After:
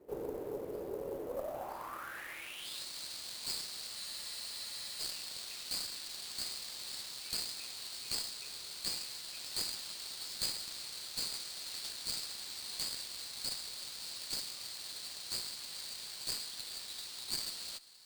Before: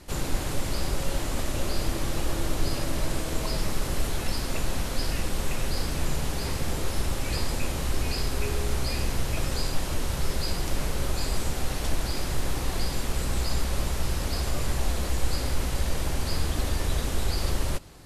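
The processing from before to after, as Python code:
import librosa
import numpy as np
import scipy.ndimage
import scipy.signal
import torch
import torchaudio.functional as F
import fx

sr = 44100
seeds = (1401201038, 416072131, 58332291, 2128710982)

y = fx.rider(x, sr, range_db=10, speed_s=0.5)
y = fx.filter_sweep_bandpass(y, sr, from_hz=440.0, to_hz=4400.0, start_s=1.23, end_s=2.86, q=6.7)
y = fx.sample_hold(y, sr, seeds[0], rate_hz=13000.0, jitter_pct=20)
y = fx.cheby_harmonics(y, sr, harmonics=(4, 6), levels_db=(-15, -26), full_scale_db=-27.5)
y = fx.spec_freeze(y, sr, seeds[1], at_s=3.98, hold_s=1.02)
y = y * librosa.db_to_amplitude(4.0)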